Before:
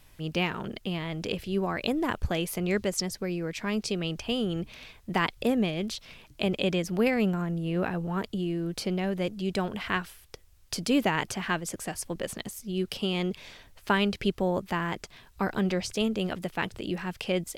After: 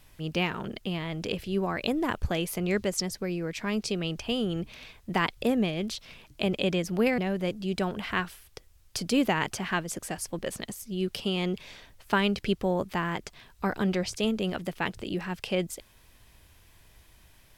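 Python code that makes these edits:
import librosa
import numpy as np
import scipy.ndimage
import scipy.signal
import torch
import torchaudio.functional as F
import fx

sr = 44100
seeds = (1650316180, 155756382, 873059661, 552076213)

y = fx.edit(x, sr, fx.cut(start_s=7.18, length_s=1.77), tone=tone)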